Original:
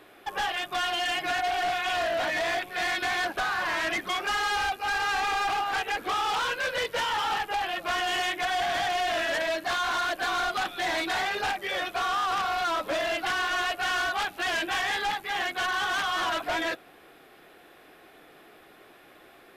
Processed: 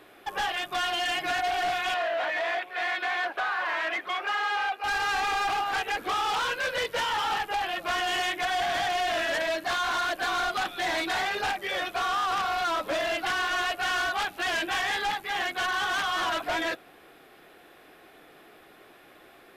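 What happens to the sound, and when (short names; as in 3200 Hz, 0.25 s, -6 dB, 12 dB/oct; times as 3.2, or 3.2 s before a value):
1.94–4.84 three-band isolator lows -19 dB, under 380 Hz, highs -14 dB, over 3500 Hz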